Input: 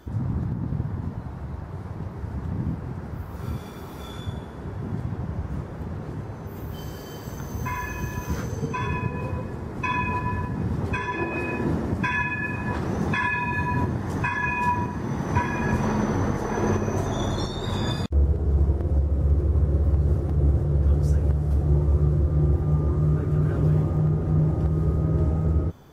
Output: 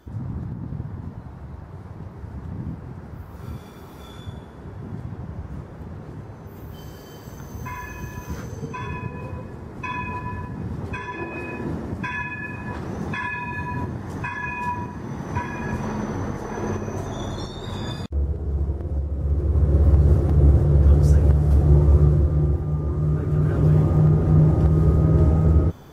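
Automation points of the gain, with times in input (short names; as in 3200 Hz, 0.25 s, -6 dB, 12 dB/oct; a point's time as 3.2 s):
19.17 s -3.5 dB
19.84 s +5.5 dB
22 s +5.5 dB
22.72 s -2.5 dB
23.98 s +5.5 dB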